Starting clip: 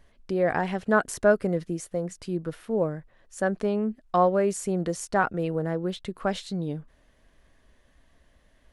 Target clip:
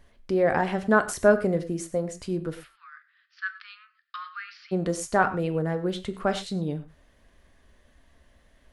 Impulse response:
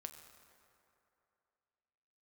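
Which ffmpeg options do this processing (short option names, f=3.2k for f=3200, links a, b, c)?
-filter_complex "[0:a]asplit=3[a][b][c];[a]afade=t=out:st=2.63:d=0.02[d];[b]asuperpass=centerf=2500:order=20:qfactor=0.65,afade=t=in:st=2.63:d=0.02,afade=t=out:st=4.71:d=0.02[e];[c]afade=t=in:st=4.71:d=0.02[f];[d][e][f]amix=inputs=3:normalize=0[g];[1:a]atrim=start_sample=2205,afade=t=out:st=0.17:d=0.01,atrim=end_sample=7938[h];[g][h]afir=irnorm=-1:irlink=0,volume=7dB"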